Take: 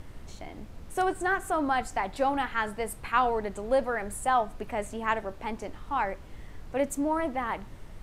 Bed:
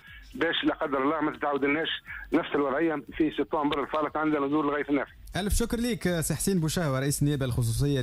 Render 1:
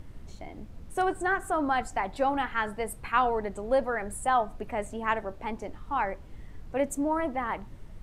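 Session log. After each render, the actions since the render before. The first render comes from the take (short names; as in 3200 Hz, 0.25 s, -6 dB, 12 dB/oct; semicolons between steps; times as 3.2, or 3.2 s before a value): denoiser 6 dB, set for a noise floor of -46 dBFS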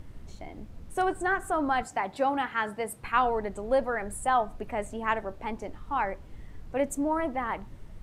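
1.83–3.04 HPF 120 Hz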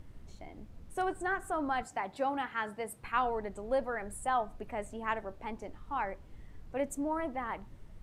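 gain -6 dB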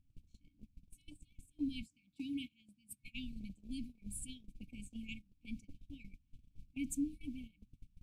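FFT band-reject 310–2200 Hz; gate -44 dBFS, range -22 dB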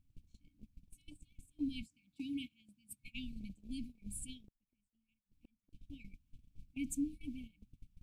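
4.41–5.73 flipped gate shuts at -46 dBFS, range -37 dB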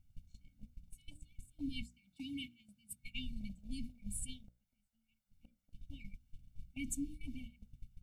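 notches 60/120/180/240/300/360/420/480/540/600 Hz; comb 1.4 ms, depth 90%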